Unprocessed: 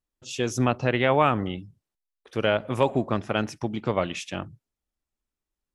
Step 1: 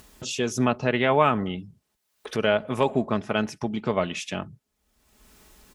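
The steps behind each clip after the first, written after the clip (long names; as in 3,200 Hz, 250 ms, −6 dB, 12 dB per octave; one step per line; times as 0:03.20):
high-pass filter 42 Hz
comb filter 4.7 ms, depth 36%
upward compression, threshold −26 dBFS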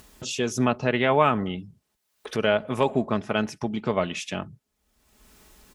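no processing that can be heard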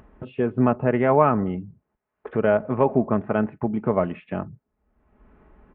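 Gaussian smoothing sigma 5.2 samples
level +4 dB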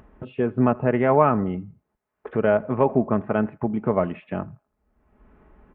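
delay with a band-pass on its return 82 ms, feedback 31%, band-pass 1,300 Hz, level −23.5 dB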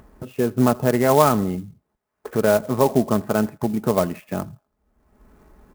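converter with an unsteady clock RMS 0.04 ms
level +2 dB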